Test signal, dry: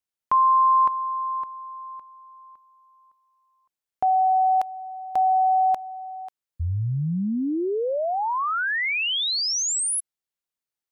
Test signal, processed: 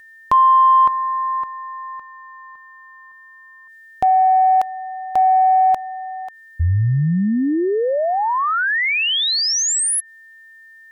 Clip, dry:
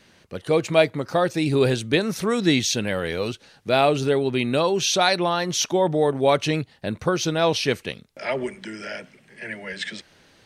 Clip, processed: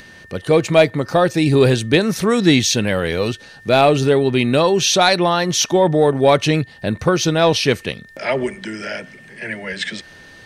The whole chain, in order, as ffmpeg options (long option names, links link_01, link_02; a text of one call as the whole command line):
ffmpeg -i in.wav -af "asoftclip=type=tanh:threshold=-6dB,acompressor=mode=upward:threshold=-49dB:ratio=1.5:attack=58:release=40:knee=2.83:detection=peak,aeval=exprs='val(0)+0.00398*sin(2*PI*1800*n/s)':channel_layout=same,lowshelf=frequency=130:gain=4.5,volume=6dB" out.wav